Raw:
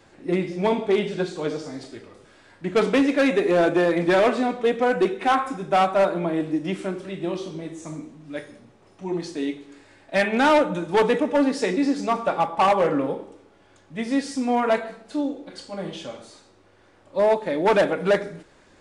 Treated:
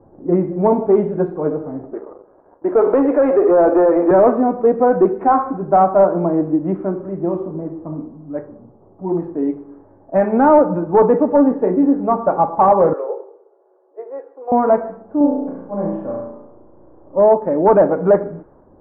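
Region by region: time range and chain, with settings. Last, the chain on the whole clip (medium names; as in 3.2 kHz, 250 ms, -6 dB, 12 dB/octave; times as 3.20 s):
1.93–4.11 s: high-pass 340 Hz 24 dB/octave + compression 1.5:1, threshold -28 dBFS + waveshaping leveller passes 2
11.48–12.02 s: distance through air 240 m + doubling 29 ms -8 dB
12.93–14.52 s: Chebyshev high-pass 370 Hz, order 6 + peaking EQ 980 Hz -5 dB 2.2 oct
15.17–17.18 s: low-pass 3.1 kHz + flutter echo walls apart 5.9 m, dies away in 0.84 s
whole clip: low-pass 1.1 kHz 24 dB/octave; level-controlled noise filter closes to 780 Hz, open at -19.5 dBFS; trim +7.5 dB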